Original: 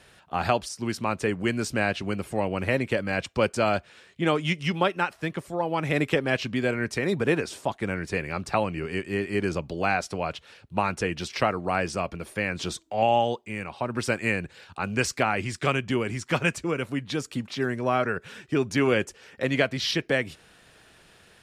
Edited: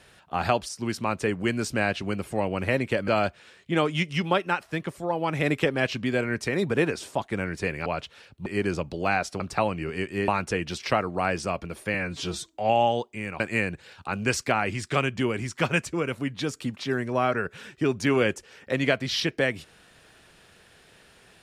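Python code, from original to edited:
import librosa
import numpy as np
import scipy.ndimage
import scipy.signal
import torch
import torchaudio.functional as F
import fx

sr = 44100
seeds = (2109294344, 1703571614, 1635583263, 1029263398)

y = fx.edit(x, sr, fx.cut(start_s=3.08, length_s=0.5),
    fx.swap(start_s=8.36, length_s=0.88, other_s=10.18, other_length_s=0.6),
    fx.stretch_span(start_s=12.44, length_s=0.34, factor=1.5),
    fx.cut(start_s=13.73, length_s=0.38), tone=tone)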